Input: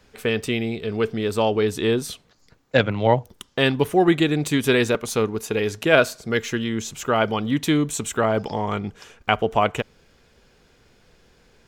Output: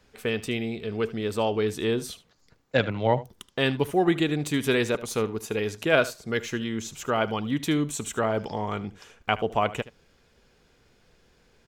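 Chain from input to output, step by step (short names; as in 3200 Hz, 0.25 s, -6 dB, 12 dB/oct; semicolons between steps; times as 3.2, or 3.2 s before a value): echo 75 ms -17 dB; gain -5 dB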